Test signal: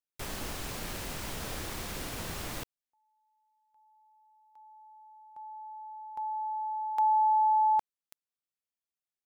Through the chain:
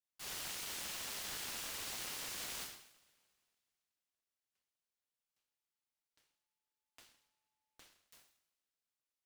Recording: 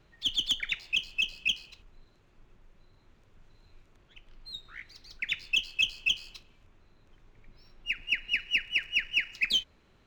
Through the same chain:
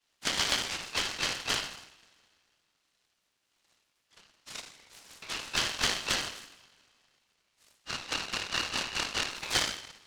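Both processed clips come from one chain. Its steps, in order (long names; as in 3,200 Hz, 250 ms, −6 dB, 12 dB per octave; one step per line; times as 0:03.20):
elliptic high-pass filter 2,800 Hz, stop band 70 dB
coupled-rooms reverb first 0.67 s, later 2.4 s, from −24 dB, DRR −8.5 dB
short delay modulated by noise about 1,300 Hz, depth 0.068 ms
level −8.5 dB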